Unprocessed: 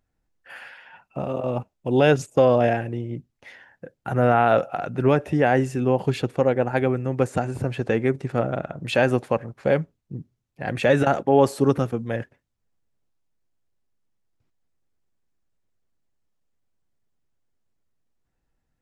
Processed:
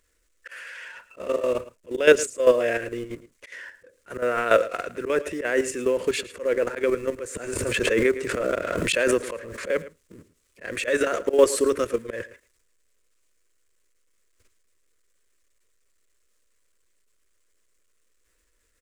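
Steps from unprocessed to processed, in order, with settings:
mu-law and A-law mismatch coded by mu
octave-band graphic EQ 250/500/1,000/2,000/8,000 Hz −8/+7/+7/+6/+11 dB
volume swells 115 ms
output level in coarse steps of 10 dB
phaser with its sweep stopped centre 330 Hz, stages 4
single-tap delay 110 ms −17 dB
0:07.53–0:09.68: background raised ahead of every attack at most 20 dB per second
level +3 dB

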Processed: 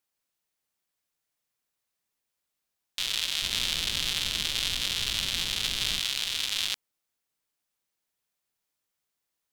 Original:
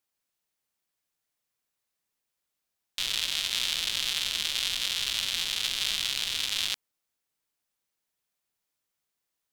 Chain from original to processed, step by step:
0:03.42–0:05.99: low-shelf EQ 360 Hz +11.5 dB

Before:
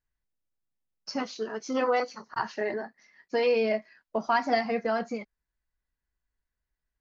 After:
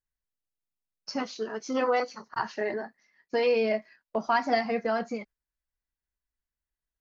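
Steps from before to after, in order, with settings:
noise gate −49 dBFS, range −7 dB

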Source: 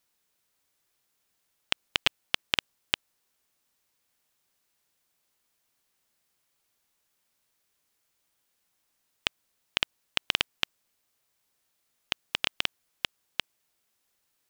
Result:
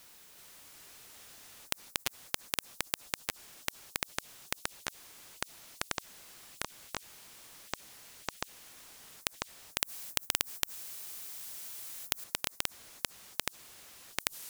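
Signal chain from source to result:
0:09.78–0:12.24: RIAA equalisation recording
delay with pitch and tempo change per echo 369 ms, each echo −6 semitones, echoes 3
every bin compressed towards the loudest bin 4 to 1
level −4.5 dB

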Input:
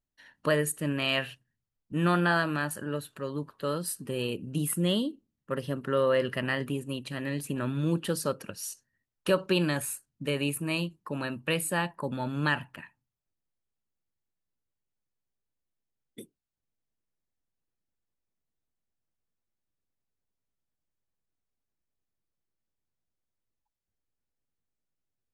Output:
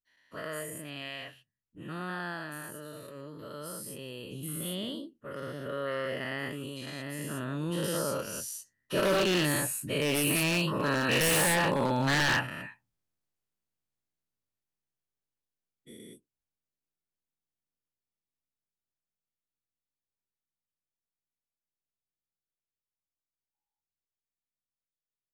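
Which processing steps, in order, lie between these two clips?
every bin's largest magnitude spread in time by 240 ms
source passing by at 0:11.41, 9 m/s, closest 13 metres
wave folding −20 dBFS

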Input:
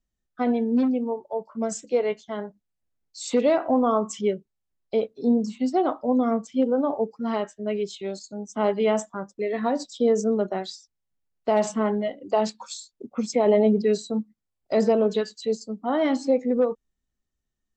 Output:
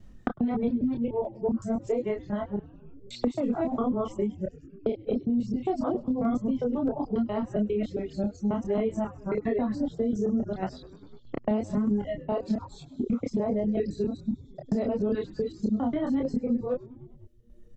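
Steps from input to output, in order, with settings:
reversed piece by piece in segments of 135 ms
RIAA equalisation playback
reverb reduction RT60 1.7 s
dynamic equaliser 250 Hz, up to +6 dB, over −31 dBFS, Q 2.6
brickwall limiter −15.5 dBFS, peak gain reduction 13.5 dB
multi-voice chorus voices 4, 1 Hz, delay 27 ms, depth 3 ms
shaped tremolo saw down 1.6 Hz, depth 45%
echo with shifted repeats 100 ms, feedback 62%, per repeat −120 Hz, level −21 dB
multiband upward and downward compressor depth 100%

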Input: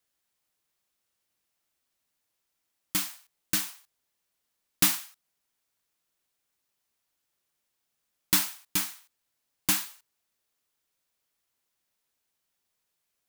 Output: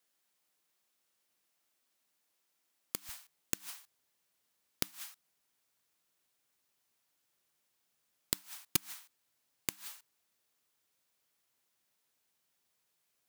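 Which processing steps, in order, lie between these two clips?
high-pass filter 170 Hz 12 dB per octave, from 0:03.09 80 Hz
gate with flip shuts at −13 dBFS, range −33 dB
level +1 dB

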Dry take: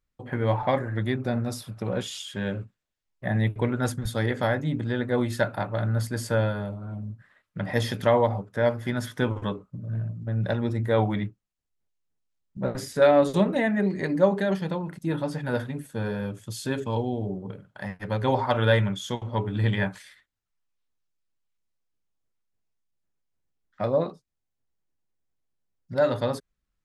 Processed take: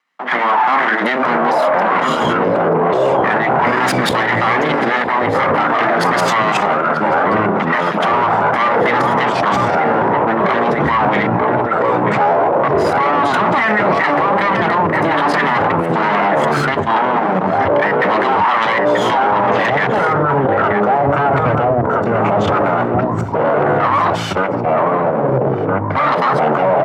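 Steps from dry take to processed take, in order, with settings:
lower of the sound and its delayed copy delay 1 ms
downward compressor 5 to 1, threshold −26 dBFS, peak gain reduction 8 dB
sample-and-hold tremolo 2 Hz, depth 75%
mid-hump overdrive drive 19 dB, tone 1,400 Hz, clips at −15.5 dBFS
output level in coarse steps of 18 dB
elliptic high-pass filter 170 Hz
parametric band 1,700 Hz +12 dB 2.5 octaves
slap from a distant wall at 160 metres, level −7 dB
delay with pitch and tempo change per echo 786 ms, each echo −6 semitones, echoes 2
boost into a limiter +33.5 dB
multiband upward and downward expander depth 40%
level −5.5 dB

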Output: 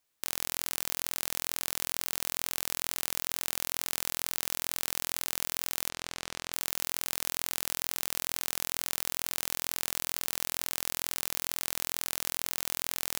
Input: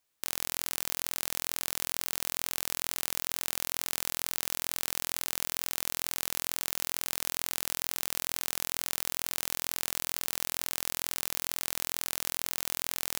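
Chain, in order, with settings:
0:05.89–0:06.53: high-frequency loss of the air 73 metres

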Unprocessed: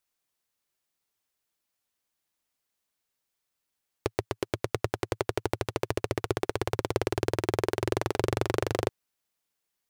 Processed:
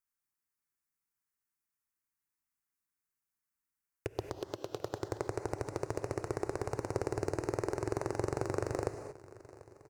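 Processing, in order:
0:04.35–0:04.91: high-pass filter 290 Hz 6 dB per octave
phaser swept by the level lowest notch 600 Hz, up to 3,300 Hz, full sweep at −30.5 dBFS
on a send: repeating echo 741 ms, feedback 59%, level −20 dB
on the sum: reverb whose tail is shaped and stops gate 250 ms rising, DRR 8 dB
level −6.5 dB

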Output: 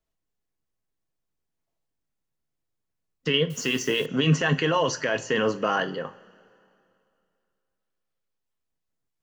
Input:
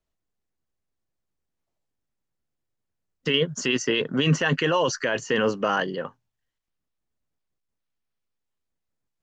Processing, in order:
coupled-rooms reverb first 0.31 s, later 2.6 s, from −21 dB, DRR 8.5 dB
0:03.50–0:04.06: bit-depth reduction 8 bits, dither triangular
level −1.5 dB

